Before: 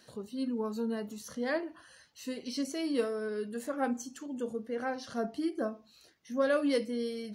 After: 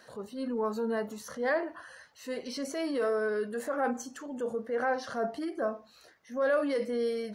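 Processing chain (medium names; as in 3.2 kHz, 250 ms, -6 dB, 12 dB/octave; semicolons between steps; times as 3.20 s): peak limiter -27 dBFS, peak gain reduction 8 dB; high-order bell 950 Hz +9 dB 2.4 oct; transient shaper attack -5 dB, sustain +1 dB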